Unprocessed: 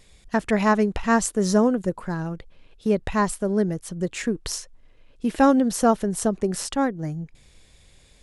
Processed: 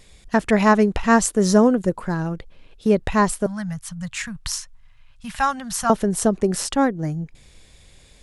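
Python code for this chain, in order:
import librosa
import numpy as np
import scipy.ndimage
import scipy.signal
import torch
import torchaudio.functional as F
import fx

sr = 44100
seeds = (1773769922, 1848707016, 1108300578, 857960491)

y = fx.cheby1_bandstop(x, sr, low_hz=140.0, high_hz=1000.0, order=2, at=(3.46, 5.9))
y = y * librosa.db_to_amplitude(4.0)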